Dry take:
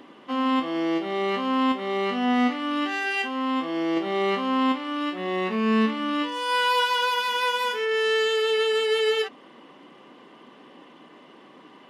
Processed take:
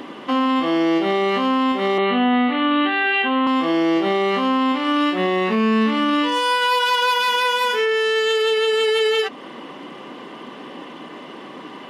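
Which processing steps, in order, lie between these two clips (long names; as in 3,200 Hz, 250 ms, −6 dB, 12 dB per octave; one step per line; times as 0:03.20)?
0:01.98–0:03.47: Butterworth low-pass 4,100 Hz 96 dB per octave
in parallel at −1 dB: downward compressor, threshold −32 dBFS, peak gain reduction 13.5 dB
on the sum: brickwall limiter −19 dBFS, peak gain reduction 9.5 dB
level +7.5 dB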